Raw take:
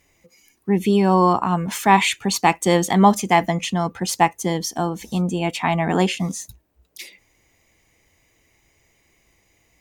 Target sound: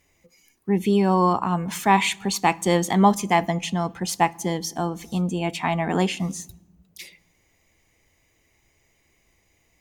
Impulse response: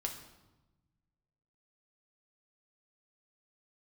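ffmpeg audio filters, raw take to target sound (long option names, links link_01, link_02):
-filter_complex "[0:a]asplit=2[link_01][link_02];[1:a]atrim=start_sample=2205,lowshelf=frequency=140:gain=10.5[link_03];[link_02][link_03]afir=irnorm=-1:irlink=0,volume=-16dB[link_04];[link_01][link_04]amix=inputs=2:normalize=0,volume=-4.5dB"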